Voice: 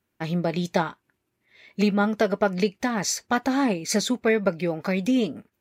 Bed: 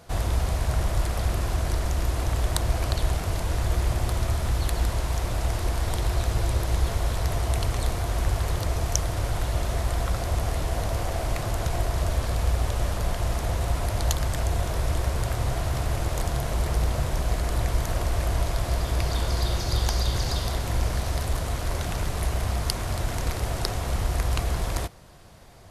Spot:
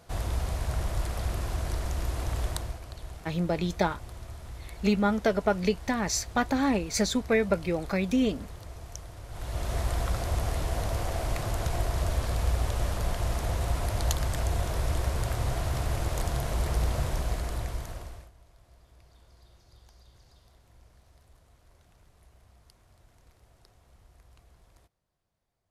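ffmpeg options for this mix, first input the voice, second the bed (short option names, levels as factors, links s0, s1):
-filter_complex "[0:a]adelay=3050,volume=0.708[s0];[1:a]volume=2.66,afade=t=out:st=2.45:d=0.35:silence=0.266073,afade=t=in:st=9.28:d=0.5:silence=0.199526,afade=t=out:st=17.06:d=1.25:silence=0.0334965[s1];[s0][s1]amix=inputs=2:normalize=0"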